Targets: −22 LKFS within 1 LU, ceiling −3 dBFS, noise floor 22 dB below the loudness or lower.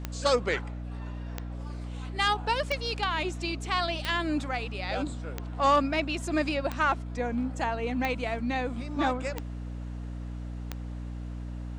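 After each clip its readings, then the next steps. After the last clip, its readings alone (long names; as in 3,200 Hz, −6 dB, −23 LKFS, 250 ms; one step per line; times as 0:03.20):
number of clicks 9; mains hum 60 Hz; hum harmonics up to 300 Hz; level of the hum −34 dBFS; integrated loudness −30.5 LKFS; sample peak −13.5 dBFS; target loudness −22.0 LKFS
→ click removal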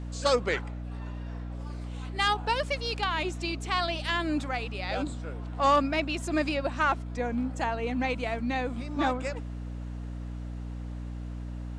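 number of clicks 0; mains hum 60 Hz; hum harmonics up to 300 Hz; level of the hum −34 dBFS
→ hum removal 60 Hz, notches 5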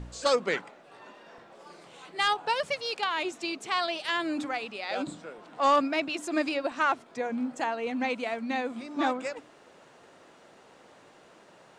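mains hum none found; integrated loudness −29.5 LKFS; sample peak −14.5 dBFS; target loudness −22.0 LKFS
→ level +7.5 dB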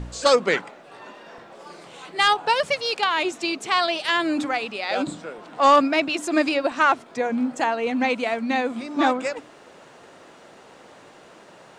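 integrated loudness −22.0 LKFS; sample peak −7.0 dBFS; background noise floor −49 dBFS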